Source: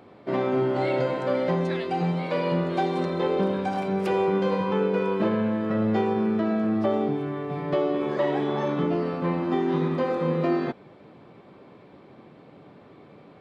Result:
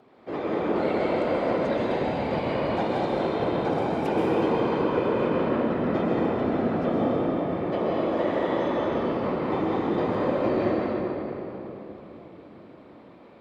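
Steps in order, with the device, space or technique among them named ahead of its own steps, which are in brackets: whispering ghost (whisper effect; high-pass 240 Hz 6 dB/octave; reverberation RT60 3.7 s, pre-delay 120 ms, DRR -4.5 dB); trim -5 dB

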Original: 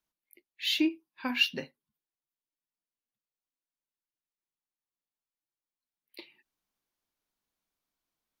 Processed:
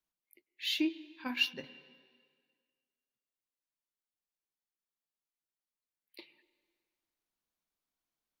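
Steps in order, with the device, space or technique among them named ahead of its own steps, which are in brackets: filtered reverb send (on a send at -17 dB: high-pass 190 Hz + low-pass 3.7 kHz 12 dB/octave + reverberation RT60 1.8 s, pre-delay 94 ms); 1.24–1.64 s: on the sum: gate -33 dBFS, range -6 dB; trim -4.5 dB

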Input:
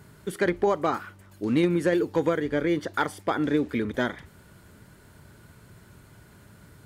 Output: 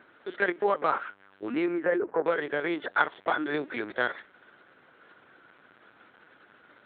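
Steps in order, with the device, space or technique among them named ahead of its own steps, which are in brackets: 1.53–2.26 s: low-pass 3.2 kHz -> 1.5 kHz 24 dB/octave; talking toy (LPC vocoder at 8 kHz pitch kept; high-pass 410 Hz 12 dB/octave; peaking EQ 1.5 kHz +5 dB 0.57 oct)

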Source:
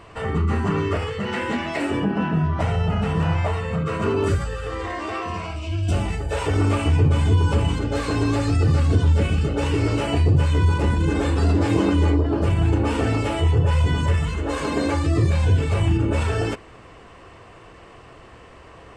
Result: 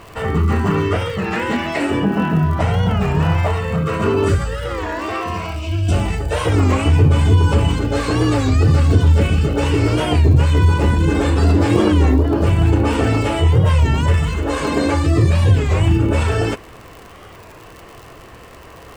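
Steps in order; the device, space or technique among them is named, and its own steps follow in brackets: warped LP (warped record 33 1/3 rpm, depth 160 cents; crackle 79 per s -34 dBFS; pink noise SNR 39 dB); trim +5 dB

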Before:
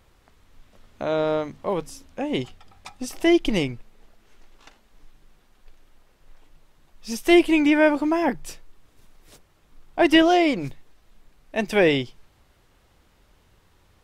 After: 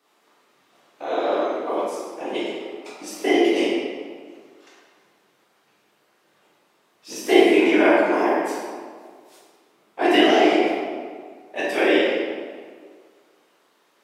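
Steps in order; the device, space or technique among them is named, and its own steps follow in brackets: whispering ghost (whisper effect; high-pass 300 Hz 24 dB/octave; reverberation RT60 1.8 s, pre-delay 11 ms, DRR -7 dB); trim -5.5 dB

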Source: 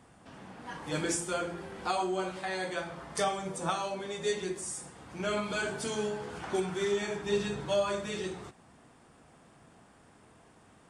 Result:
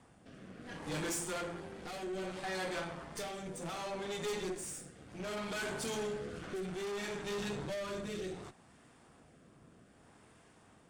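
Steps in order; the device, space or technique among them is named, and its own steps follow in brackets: overdriven rotary cabinet (valve stage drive 38 dB, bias 0.75; rotary cabinet horn 0.65 Hz); trim +4 dB

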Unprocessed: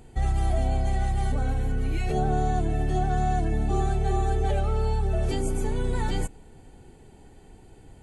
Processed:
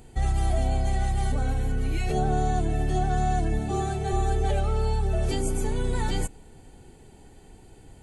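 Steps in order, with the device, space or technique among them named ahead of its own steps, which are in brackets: 3.59–4.13 s: high-pass 85 Hz; presence and air boost (peaking EQ 4.9 kHz +2.5 dB 1.8 oct; treble shelf 9.1 kHz +6 dB)

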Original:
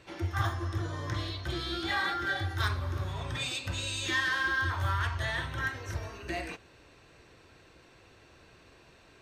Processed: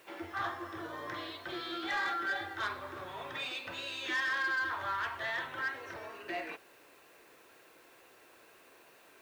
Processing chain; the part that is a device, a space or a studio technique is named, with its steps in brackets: tape answering machine (band-pass 370–3000 Hz; saturation -27 dBFS, distortion -16 dB; wow and flutter 26 cents; white noise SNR 28 dB)

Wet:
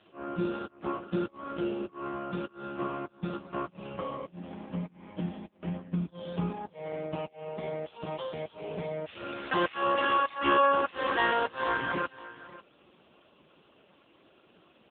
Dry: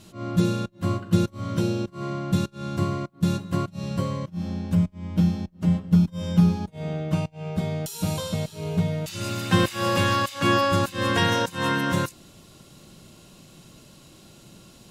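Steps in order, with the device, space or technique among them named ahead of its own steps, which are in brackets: 7.60–9.38 s: dynamic bell 110 Hz, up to +6 dB, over -46 dBFS, Q 4.8; satellite phone (band-pass 380–3200 Hz; delay 545 ms -17 dB; AMR-NB 5.15 kbps 8 kHz)

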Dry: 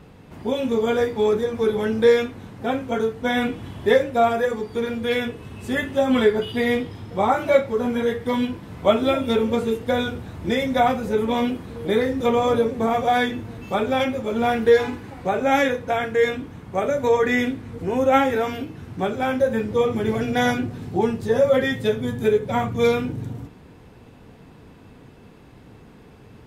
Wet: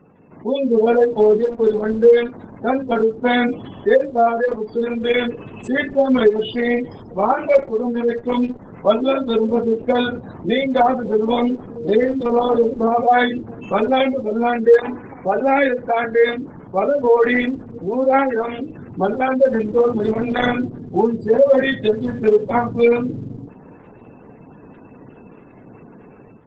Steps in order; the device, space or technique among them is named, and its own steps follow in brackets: 0.70–1.33 s: dynamic bell 620 Hz, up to +7 dB, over -39 dBFS, Q 3.5; noise-suppressed video call (high-pass 160 Hz 12 dB/octave; spectral gate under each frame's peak -20 dB strong; level rider gain up to 9 dB; trim -1.5 dB; Opus 12 kbps 48 kHz)

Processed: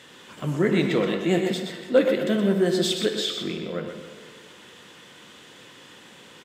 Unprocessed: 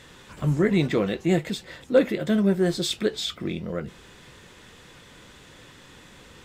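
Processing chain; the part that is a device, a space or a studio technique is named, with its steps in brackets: PA in a hall (high-pass 180 Hz 12 dB/octave; peaking EQ 3 kHz +6 dB 0.23 oct; delay 124 ms -7.5 dB; reverberation RT60 1.8 s, pre-delay 36 ms, DRR 7.5 dB)

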